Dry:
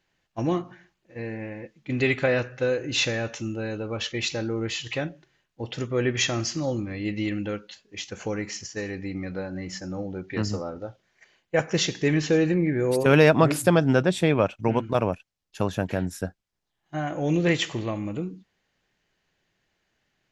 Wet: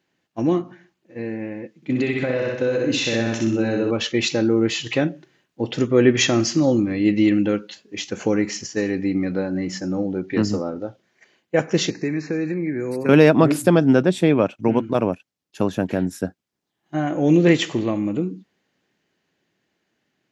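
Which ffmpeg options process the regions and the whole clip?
ffmpeg -i in.wav -filter_complex "[0:a]asettb=1/sr,asplit=3[link_01][link_02][link_03];[link_01]atrim=end=1.764[link_04];[link_02]atrim=start=1.76:end=3.91,asetpts=PTS-STARTPTS,afade=type=in:duration=0.004:curve=qsin,afade=type=out:start_time=2.146:duration=0.004:curve=qsin,aecho=1:1:62|124|186|248|310|372:0.708|0.34|0.163|0.0783|0.0376|0.018,atrim=end_sample=94815,acompressor=threshold=-23dB:ratio=10:attack=3.2:release=140:knee=1:detection=peak[link_05];[link_03]atrim=start=3.906[link_06];[link_04][link_05]acrossfade=duration=0.004:curve1=hsin:curve2=qsin[link_07];[link_07][link_06]acrossfade=duration=0.004:curve1=qsin:curve2=hsin,asettb=1/sr,asplit=3[link_08][link_09][link_10];[link_08]atrim=end=11.904[link_11];[link_09]atrim=start=11.9:end=13.09,asetpts=PTS-STARTPTS,afade=type=in:duration=0.004:curve=qsin,afade=type=out:start_time=1.186:duration=0.004:curve=qsin,asuperstop=centerf=3200:order=12:qfactor=2.5,acrossover=split=310|1100|2800[link_12][link_13][link_14][link_15];[link_12]acompressor=threshold=-33dB:ratio=3[link_16];[link_13]acompressor=threshold=-37dB:ratio=3[link_17];[link_14]acompressor=threshold=-37dB:ratio=3[link_18];[link_15]acompressor=threshold=-50dB:ratio=3[link_19];[link_16][link_17][link_18][link_19]amix=inputs=4:normalize=0[link_20];[link_10]atrim=start=13.086[link_21];[link_11][link_20]acrossfade=duration=0.004:curve1=hsin:curve2=qsin[link_22];[link_22][link_21]acrossfade=duration=0.004:curve1=qsin:curve2=hsin,highpass=110,equalizer=frequency=280:width_type=o:width=1.4:gain=8,dynaudnorm=framelen=470:gausssize=11:maxgain=6dB" out.wav

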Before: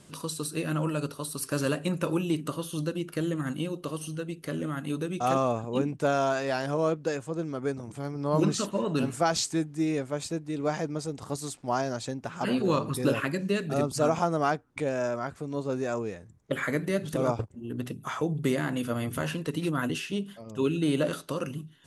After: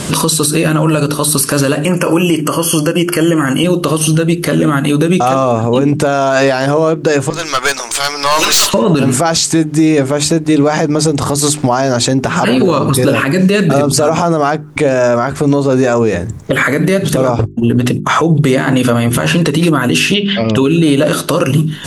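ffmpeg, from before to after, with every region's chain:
ffmpeg -i in.wav -filter_complex "[0:a]asettb=1/sr,asplit=3[link_01][link_02][link_03];[link_01]atrim=end=1.854[link_04];[link_02]atrim=start=1.85:end=3.64,asetpts=PTS-STARTPTS,afade=type=in:duration=0.004:curve=qsin,afade=type=out:start_time=1.786:duration=0.004:curve=qsin,asuperstop=centerf=3800:order=20:qfactor=4.1,lowshelf=frequency=220:gain=-9.5[link_05];[link_03]atrim=start=3.636[link_06];[link_04][link_05]acrossfade=duration=0.004:curve1=hsin:curve2=qsin[link_07];[link_07][link_06]acrossfade=duration=0.004:curve1=qsin:curve2=hsin,asettb=1/sr,asplit=3[link_08][link_09][link_10];[link_08]atrim=end=7.304[link_11];[link_09]atrim=start=7.3:end=8.74,asetpts=PTS-STARTPTS,afade=type=in:duration=0.004:curve=qsin,afade=type=out:start_time=1.436:duration=0.004:curve=qsin,highpass=1200,equalizer=frequency=4600:width=0.75:gain=8.5,aeval=exprs='(tanh(89.1*val(0)+0.4)-tanh(0.4))/89.1':channel_layout=same[link_12];[link_10]atrim=start=8.736[link_13];[link_11][link_12]acrossfade=duration=0.004:curve1=hsin:curve2=qsin[link_14];[link_14][link_13]acrossfade=duration=0.004:curve1=qsin:curve2=hsin,asettb=1/sr,asplit=3[link_15][link_16][link_17];[link_15]atrim=end=17.244[link_18];[link_16]atrim=start=17.24:end=19.56,asetpts=PTS-STARTPTS,afade=type=in:duration=0.004:curve=qsin,afade=type=out:start_time=2.316:duration=0.004:curve=qsin,agate=range=-38dB:threshold=-42dB:ratio=16:release=100:detection=peak,lowpass=10000[link_19];[link_17]atrim=start=19.556[link_20];[link_18][link_19]acrossfade=duration=0.004:curve1=hsin:curve2=qsin[link_21];[link_21][link_20]acrossfade=duration=0.004:curve1=qsin:curve2=hsin,asettb=1/sr,asplit=3[link_22][link_23][link_24];[link_22]atrim=end=20.144[link_25];[link_23]atrim=start=20.14:end=20.56,asetpts=PTS-STARTPTS,afade=type=in:duration=0.004:curve=qsin,afade=type=out:start_time=0.416:duration=0.004:curve=qsin,lowpass=frequency=3800:width=0.5412,lowpass=frequency=3800:width=1.3066,highshelf=frequency=1600:width_type=q:width=1.5:gain=9[link_26];[link_24]atrim=start=20.556[link_27];[link_25][link_26]acrossfade=duration=0.004:curve1=hsin:curve2=qsin[link_28];[link_28][link_27]acrossfade=duration=0.004:curve1=qsin:curve2=hsin,bandreject=frequency=50:width_type=h:width=6,bandreject=frequency=100:width_type=h:width=6,bandreject=frequency=150:width_type=h:width=6,bandreject=frequency=200:width_type=h:width=6,bandreject=frequency=250:width_type=h:width=6,bandreject=frequency=300:width_type=h:width=6,bandreject=frequency=350:width_type=h:width=6,bandreject=frequency=400:width_type=h:width=6,acompressor=threshold=-42dB:ratio=3,alimiter=level_in=35dB:limit=-1dB:release=50:level=0:latency=1,volume=-1dB" out.wav

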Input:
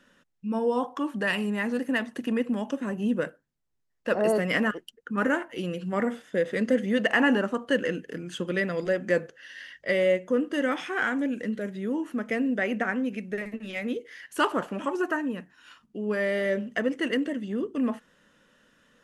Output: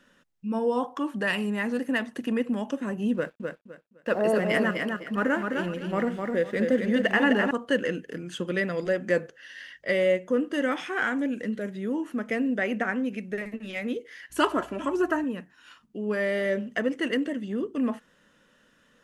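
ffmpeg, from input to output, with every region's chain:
ffmpeg -i in.wav -filter_complex "[0:a]asettb=1/sr,asplit=3[link_01][link_02][link_03];[link_01]atrim=end=3.144[link_04];[link_02]atrim=start=3.14:end=7.51,asetpts=PTS-STARTPTS,afade=type=in:duration=0.004:curve=qsin,afade=type=out:start_time=4.366:duration=0.004:curve=qsin,highshelf=frequency=5100:gain=-5.5,aeval=exprs='sgn(val(0))*max(abs(val(0))-0.00188,0)':channel_layout=same,aecho=1:1:256|512|768:0.596|0.149|0.0372,atrim=end_sample=192717[link_05];[link_03]atrim=start=7.506[link_06];[link_04][link_05]acrossfade=duration=0.004:curve1=hsin:curve2=qsin[link_07];[link_07][link_06]acrossfade=duration=0.004:curve1=qsin:curve2=hsin,asettb=1/sr,asplit=3[link_08][link_09][link_10];[link_08]atrim=end=14.304[link_11];[link_09]atrim=start=14.3:end=15.24,asetpts=PTS-STARTPTS,afade=type=in:duration=0.004:curve=qsin,afade=type=out:start_time=0.936:duration=0.004:curve=qsin,aecho=1:1:3:0.52,atrim=end_sample=41454,aeval=exprs='val(0)+0.00158*(sin(2*PI*60*n/s)+sin(2*PI*2*60*n/s)/2+sin(2*PI*3*60*n/s)/3+sin(2*PI*4*60*n/s)/4+sin(2*PI*5*60*n/s)/5)':channel_layout=same[link_12];[link_10]atrim=start=15.236[link_13];[link_11][link_12]acrossfade=duration=0.004:curve1=hsin:curve2=qsin[link_14];[link_14][link_13]acrossfade=duration=0.004:curve1=qsin:curve2=hsin" out.wav

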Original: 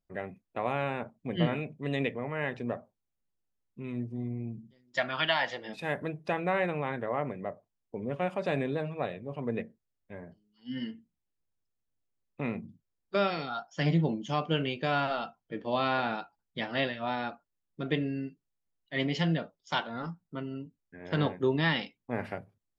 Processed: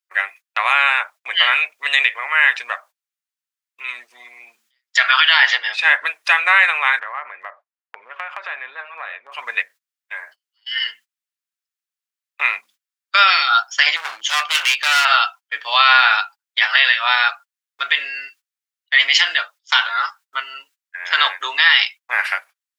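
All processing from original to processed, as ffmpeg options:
ffmpeg -i in.wav -filter_complex "[0:a]asettb=1/sr,asplit=3[link_01][link_02][link_03];[link_01]atrim=end=5.374[link_04];[link_02]atrim=start=5.37:end=6.06,asetpts=PTS-STARTPTS,afade=type=in:duration=0.004:curve=qsin,afade=type=out:start_time=0.686:duration=0.004:curve=qsin,lowpass=4800,equalizer=frequency=220:width_type=o:width=2.1:gain=7.5[link_05];[link_03]atrim=start=6.056[link_06];[link_04][link_05]acrossfade=duration=0.004:curve1=hsin:curve2=qsin[link_07];[link_07][link_06]acrossfade=duration=0.004:curve1=qsin:curve2=hsin,asettb=1/sr,asplit=3[link_08][link_09][link_10];[link_08]atrim=end=6.994[link_11];[link_09]atrim=start=6.99:end=9.32,asetpts=PTS-STARTPTS,afade=type=in:duration=0.004:curve=qsin,afade=type=out:start_time=2.326:duration=0.004:curve=qsin,lowpass=1600,acompressor=threshold=-35dB:ratio=5:attack=3.2:release=140:knee=1:detection=peak[link_12];[link_10]atrim=start=9.316[link_13];[link_11][link_12]acrossfade=duration=0.004:curve1=hsin:curve2=qsin[link_14];[link_14][link_13]acrossfade=duration=0.004:curve1=qsin:curve2=hsin,asettb=1/sr,asplit=3[link_15][link_16][link_17];[link_15]atrim=end=13.964[link_18];[link_16]atrim=start=13.96:end=15.05,asetpts=PTS-STARTPTS,afade=type=in:duration=0.004:curve=qsin,afade=type=out:start_time=1.086:duration=0.004:curve=qsin,asubboost=boost=6:cutoff=160,asoftclip=type=hard:threshold=-32.5dB[link_19];[link_17]atrim=start=15.046[link_20];[link_18][link_19]acrossfade=duration=0.004:curve1=hsin:curve2=qsin[link_21];[link_21][link_20]acrossfade=duration=0.004:curve1=qsin:curve2=hsin,agate=range=-21dB:threshold=-51dB:ratio=16:detection=peak,highpass=frequency=1300:width=0.5412,highpass=frequency=1300:width=1.3066,alimiter=level_in=26.5dB:limit=-1dB:release=50:level=0:latency=1,volume=-1dB" out.wav

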